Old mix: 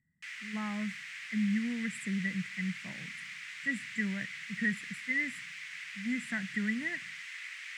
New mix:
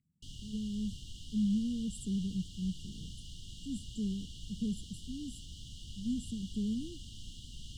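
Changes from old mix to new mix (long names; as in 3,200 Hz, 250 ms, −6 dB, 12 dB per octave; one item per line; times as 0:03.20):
background: remove high-pass with resonance 1,200 Hz, resonance Q 2.6
master: add linear-phase brick-wall band-stop 470–2,800 Hz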